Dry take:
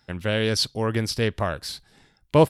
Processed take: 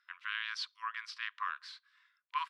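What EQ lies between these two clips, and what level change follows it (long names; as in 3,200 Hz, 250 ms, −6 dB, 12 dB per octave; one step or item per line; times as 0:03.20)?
linear-phase brick-wall high-pass 980 Hz
head-to-tape spacing loss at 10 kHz 33 dB
−1.0 dB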